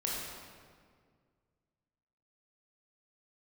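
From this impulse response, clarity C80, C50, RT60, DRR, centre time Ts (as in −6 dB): 0.5 dB, −1.5 dB, 1.9 s, −4.5 dB, 108 ms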